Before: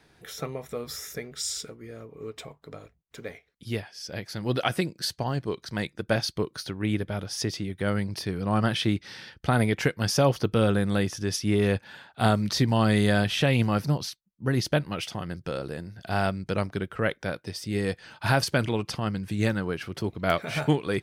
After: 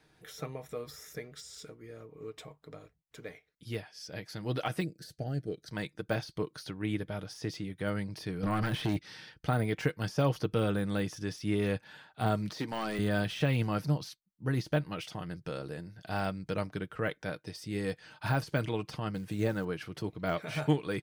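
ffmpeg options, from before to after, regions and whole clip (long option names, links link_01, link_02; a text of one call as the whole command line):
ffmpeg -i in.wav -filter_complex "[0:a]asettb=1/sr,asplit=3[link_01][link_02][link_03];[link_01]atrim=end=4.844[link_04];[link_02]atrim=start=4.84:end=5.68,asetpts=PTS-STARTPTS,afade=type=in:duration=0.004:curve=qsin,afade=type=out:start_time=0.836:duration=0.004:curve=qsin,asuperstop=centerf=1000:order=4:qfactor=1.6,equalizer=frequency=2700:width_type=o:width=1.8:gain=-9.5[link_05];[link_03]atrim=start=5.676[link_06];[link_04][link_05]acrossfade=duration=0.004:curve1=hsin:curve2=qsin[link_07];[link_07][link_06]acrossfade=duration=0.004:curve1=qsin:curve2=hsin,asettb=1/sr,asplit=3[link_08][link_09][link_10];[link_08]atrim=end=8.434[link_11];[link_09]atrim=start=8.43:end=8.99,asetpts=PTS-STARTPTS,afade=type=in:duration=0.004:curve=qsin,afade=type=out:start_time=0.556:duration=0.004:curve=qsin,equalizer=frequency=12000:width_type=o:width=0.42:gain=7.5,acompressor=threshold=-26dB:ratio=5:attack=3.2:release=140:knee=1:detection=peak,aeval=exprs='0.119*sin(PI/2*2.24*val(0)/0.119)':channel_layout=same[link_12];[link_10]atrim=start=8.986[link_13];[link_11][link_12]acrossfade=duration=0.004:curve1=hsin:curve2=qsin[link_14];[link_14][link_13]acrossfade=duration=0.004:curve1=qsin:curve2=hsin,asettb=1/sr,asplit=3[link_15][link_16][link_17];[link_15]atrim=end=12.534[link_18];[link_16]atrim=start=12.53:end=12.99,asetpts=PTS-STARTPTS,afade=type=in:duration=0.004:curve=qsin,afade=type=out:start_time=0.456:duration=0.004:curve=qsin,highpass=260,volume=21dB,asoftclip=hard,volume=-21dB[link_19];[link_17]atrim=start=12.986[link_20];[link_18][link_19]acrossfade=duration=0.004:curve1=hsin:curve2=qsin[link_21];[link_21][link_20]acrossfade=duration=0.004:curve1=qsin:curve2=hsin,asettb=1/sr,asplit=3[link_22][link_23][link_24];[link_22]atrim=end=19.144[link_25];[link_23]atrim=start=19.14:end=19.65,asetpts=PTS-STARTPTS,afade=type=in:duration=0.004:curve=qsin,afade=type=out:start_time=0.506:duration=0.004:curve=qsin,equalizer=frequency=520:width=1.2:gain=5,acrusher=bits=7:mode=log:mix=0:aa=0.000001[link_26];[link_24]atrim=start=19.646[link_27];[link_25][link_26]acrossfade=duration=0.004:curve1=hsin:curve2=qsin[link_28];[link_28][link_27]acrossfade=duration=0.004:curve1=qsin:curve2=hsin,deesser=0.85,aecho=1:1:6.5:0.35,volume=-6.5dB" out.wav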